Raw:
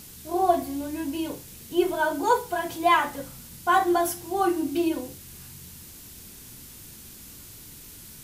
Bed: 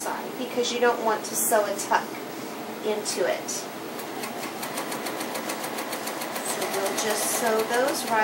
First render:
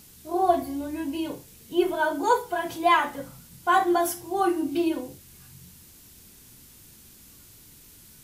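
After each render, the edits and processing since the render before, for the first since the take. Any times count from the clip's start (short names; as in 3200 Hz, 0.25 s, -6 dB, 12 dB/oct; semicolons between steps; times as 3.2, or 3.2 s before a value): noise print and reduce 6 dB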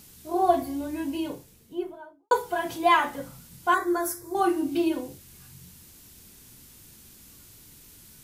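1.07–2.31 studio fade out; 3.74–4.35 fixed phaser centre 800 Hz, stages 6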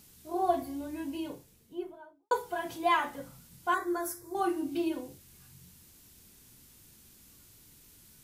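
gain -6.5 dB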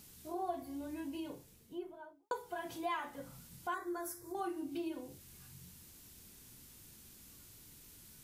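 compressor 2:1, threshold -44 dBFS, peak gain reduction 12.5 dB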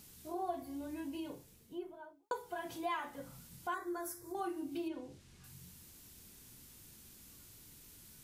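4.88–5.44 air absorption 73 m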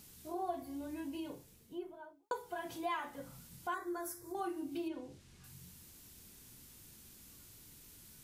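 nothing audible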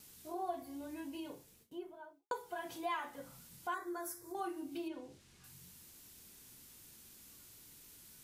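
gate with hold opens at -52 dBFS; low shelf 230 Hz -7.5 dB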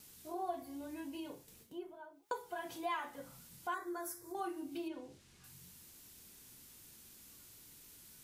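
1.48–2.43 upward compressor, threshold -51 dBFS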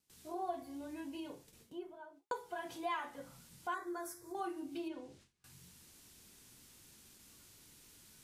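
Bessel low-pass 10000 Hz, order 2; gate with hold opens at -50 dBFS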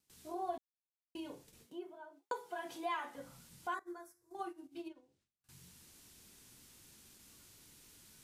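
0.58–1.15 mute; 1.66–3.15 HPF 190 Hz; 3.79–5.49 upward expander 2.5:1, over -50 dBFS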